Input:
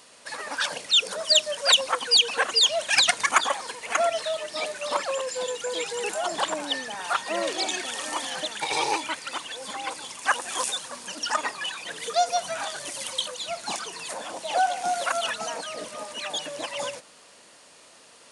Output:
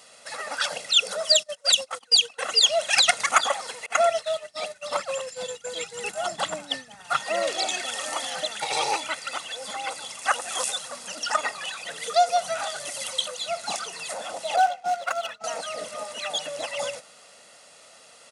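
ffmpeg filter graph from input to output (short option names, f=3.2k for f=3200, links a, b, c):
-filter_complex "[0:a]asettb=1/sr,asplit=3[a][b][c];[a]atrim=end=1.364[d];[b]atrim=start=1.36:end=2.43,asetpts=PTS-STARTPTS,afade=t=in:d=0.004:c=qsin,afade=t=out:st=1.066:d=0.004:c=qsin,agate=range=-27dB:threshold=-29dB:ratio=16:release=100:detection=peak,acrossover=split=300|3000[e][f][g];[f]acompressor=threshold=-33dB:ratio=4:attack=3.2:release=140:knee=2.83:detection=peak[h];[e][h][g]amix=inputs=3:normalize=0[i];[c]atrim=start=2.426[j];[d][i]acrossfade=d=0.004:c1=hsin:c2=qsin[k];[k][j]acrossfade=d=0.004:c1=qsin:c2=hsin,asettb=1/sr,asplit=3[l][m][n];[l]atrim=end=3.864[o];[m]atrim=start=3.86:end=7.2,asetpts=PTS-STARTPTS,afade=t=in:d=0.004:c=qsin,afade=t=out:st=3.336:d=0.004:c=qsin,agate=range=-33dB:threshold=-27dB:ratio=3:release=100:detection=peak,asubboost=boost=6.5:cutoff=220[p];[n]atrim=start=7.196[q];[o][p]acrossfade=d=0.004:c1=hsin:c2=qsin[r];[r][q]acrossfade=d=0.004:c1=qsin:c2=hsin,asettb=1/sr,asplit=3[s][t][u];[s]atrim=end=14.564[v];[t]atrim=start=14.56:end=15.44,asetpts=PTS-STARTPTS,afade=t=in:d=0.004:c=qsin,afade=t=out:st=0.876:d=0.004:c=qsin,agate=range=-33dB:threshold=-23dB:ratio=3:release=100:detection=peak,adynamicsmooth=sensitivity=6.5:basefreq=4.6k[w];[u]atrim=start=15.436[x];[v][w]acrossfade=d=0.004:c1=hsin:c2=qsin[y];[y][x]acrossfade=d=0.004:c1=qsin:c2=hsin,highpass=f=140:p=1,aecho=1:1:1.5:0.53"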